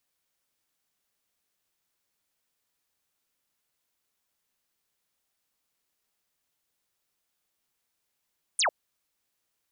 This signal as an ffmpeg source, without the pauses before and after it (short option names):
-f lavfi -i "aevalsrc='0.0841*clip(t/0.002,0,1)*clip((0.1-t)/0.002,0,1)*sin(2*PI*10000*0.1/log(520/10000)*(exp(log(520/10000)*t/0.1)-1))':d=0.1:s=44100"